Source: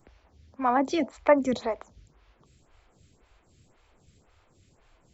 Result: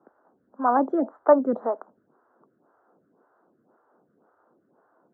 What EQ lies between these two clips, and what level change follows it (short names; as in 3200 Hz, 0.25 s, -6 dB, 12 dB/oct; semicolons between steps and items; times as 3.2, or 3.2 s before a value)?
HPF 220 Hz 24 dB/oct; elliptic low-pass 1500 Hz, stop band 40 dB; +3.5 dB